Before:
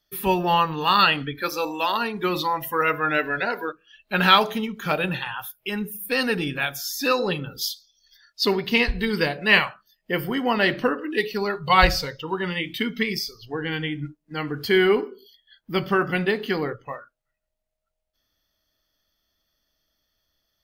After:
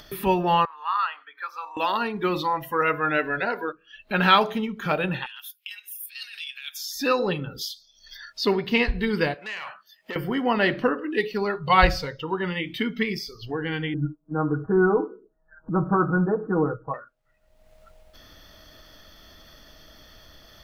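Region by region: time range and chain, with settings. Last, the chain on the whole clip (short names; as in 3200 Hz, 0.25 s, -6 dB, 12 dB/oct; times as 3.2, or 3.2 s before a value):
0.65–1.77 ladder high-pass 960 Hz, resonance 55% + high shelf 2300 Hz -10 dB
5.26–6.92 transient shaper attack +12 dB, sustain -2 dB + negative-ratio compressor -28 dBFS + ladder high-pass 2500 Hz, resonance 25%
9.34–10.16 HPF 1200 Hz 6 dB/oct + compressor, threshold -29 dBFS + core saturation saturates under 2600 Hz
13.94–16.94 steep low-pass 1500 Hz 96 dB/oct + comb 6.3 ms, depth 98%
whole clip: high shelf 4300 Hz -11.5 dB; upward compressor, threshold -27 dBFS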